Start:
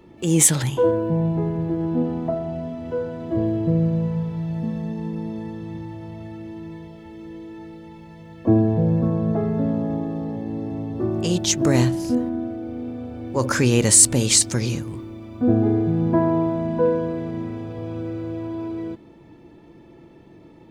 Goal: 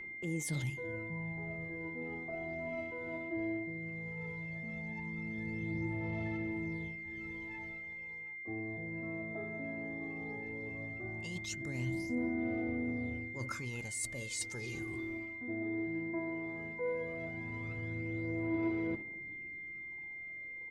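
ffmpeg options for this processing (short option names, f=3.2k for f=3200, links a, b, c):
-filter_complex "[0:a]agate=range=-7dB:threshold=-39dB:ratio=16:detection=peak,areverse,acompressor=threshold=-30dB:ratio=10,areverse,aphaser=in_gain=1:out_gain=1:delay=3.1:decay=0.59:speed=0.16:type=sinusoidal,asplit=2[a][b];[b]adelay=244.9,volume=-25dB,highshelf=f=4k:g=-5.51[c];[a][c]amix=inputs=2:normalize=0,flanger=delay=0.5:depth=2.8:regen=89:speed=0.78:shape=triangular,aeval=exprs='val(0)+0.0126*sin(2*PI*2100*n/s)':c=same,volume=-5dB"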